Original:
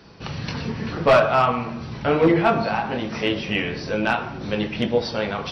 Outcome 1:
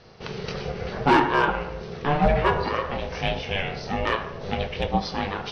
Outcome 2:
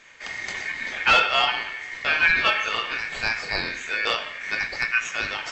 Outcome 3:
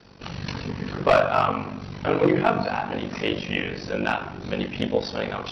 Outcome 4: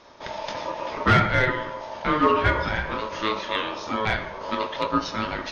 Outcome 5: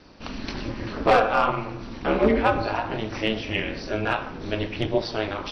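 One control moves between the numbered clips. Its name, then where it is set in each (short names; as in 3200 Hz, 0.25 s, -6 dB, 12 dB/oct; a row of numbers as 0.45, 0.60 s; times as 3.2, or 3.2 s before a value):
ring modulator, frequency: 290, 2000, 24, 760, 110 Hz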